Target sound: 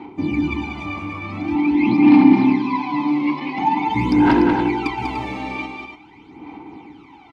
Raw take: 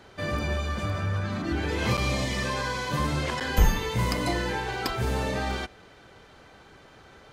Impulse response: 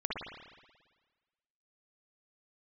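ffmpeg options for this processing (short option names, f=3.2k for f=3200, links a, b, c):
-filter_complex "[0:a]aphaser=in_gain=1:out_gain=1:delay=1.8:decay=0.76:speed=0.46:type=sinusoidal,asplit=3[a][b][c];[a]bandpass=f=300:t=q:w=8,volume=0dB[d];[b]bandpass=f=870:t=q:w=8,volume=-6dB[e];[c]bandpass=f=2.24k:t=q:w=8,volume=-9dB[f];[d][e][f]amix=inputs=3:normalize=0,aeval=exprs='0.251*sin(PI/2*3.55*val(0)/0.251)':c=same,asettb=1/sr,asplit=3[g][h][i];[g]atrim=end=1.554[j];[h]atrim=start=1.55:end=3.9,asetpts=PTS-STARTPTS,afade=t=in:d=0.004:c=qsin,afade=t=out:st=2.346:d=0.004:c=qsin,highpass=f=150:w=0.5412,highpass=f=150:w=1.3066,equalizer=f=280:t=q:w=4:g=7,equalizer=f=490:t=q:w=4:g=-10,equalizer=f=850:t=q:w=4:g=4,equalizer=f=1.5k:t=q:w=4:g=-8,equalizer=f=3.1k:t=q:w=4:g=-5,lowpass=f=4.6k:w=0.5412,lowpass=f=4.6k:w=1.3066[k];[i]atrim=start=3.896[l];[j][k]acrossfade=d=0.004:c1=hsin:c2=qsin[m];[m][l]acrossfade=d=0.004:c1=qsin:c2=hsin,aecho=1:1:194|294:0.562|0.355,volume=1.5dB"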